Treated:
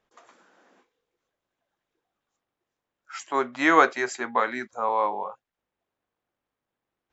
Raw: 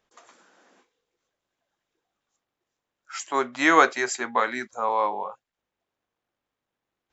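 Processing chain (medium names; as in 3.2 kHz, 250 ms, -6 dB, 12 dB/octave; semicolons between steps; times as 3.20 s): treble shelf 4.1 kHz -9 dB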